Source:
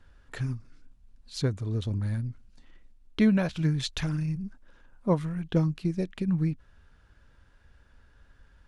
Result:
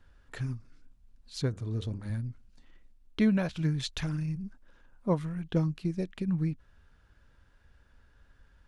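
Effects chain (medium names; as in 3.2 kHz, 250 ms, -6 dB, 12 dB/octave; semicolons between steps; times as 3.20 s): 1.49–2.10 s: de-hum 50.28 Hz, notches 33; trim -3 dB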